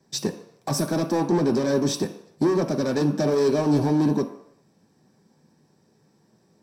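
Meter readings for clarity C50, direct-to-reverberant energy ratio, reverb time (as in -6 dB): 11.0 dB, 4.5 dB, no single decay rate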